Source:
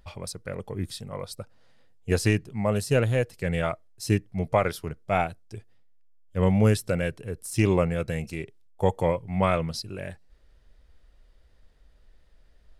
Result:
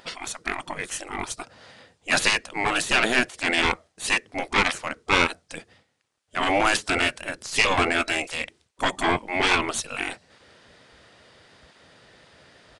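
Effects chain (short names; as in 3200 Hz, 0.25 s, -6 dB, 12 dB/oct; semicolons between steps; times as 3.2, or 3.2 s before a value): overdrive pedal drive 19 dB, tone 6700 Hz, clips at -8.5 dBFS; low shelf 230 Hz +8.5 dB; spectral gate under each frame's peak -15 dB weak; downsampling 22050 Hz; gain +6.5 dB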